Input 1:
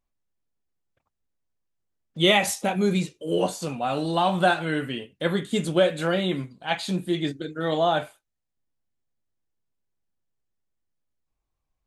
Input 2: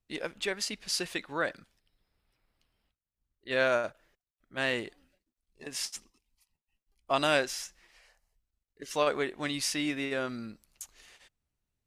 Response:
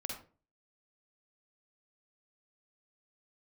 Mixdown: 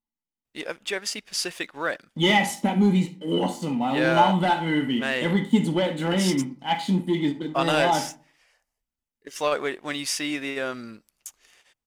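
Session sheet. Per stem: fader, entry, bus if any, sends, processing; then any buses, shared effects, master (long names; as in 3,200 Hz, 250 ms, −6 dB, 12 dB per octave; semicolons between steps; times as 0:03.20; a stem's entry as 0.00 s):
−15.0 dB, 0.00 s, send −6.5 dB, leveller curve on the samples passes 2; hollow resonant body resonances 240/870/2,000/3,000 Hz, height 16 dB, ringing for 35 ms
+0.5 dB, 0.45 s, no send, low-shelf EQ 140 Hz −11 dB; notch filter 4,100 Hz, Q 11; leveller curve on the samples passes 1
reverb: on, RT60 0.40 s, pre-delay 44 ms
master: no processing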